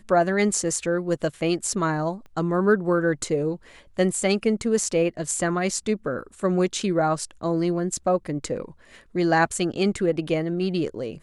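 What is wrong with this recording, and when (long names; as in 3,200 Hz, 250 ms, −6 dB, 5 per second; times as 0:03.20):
0:02.26: click −33 dBFS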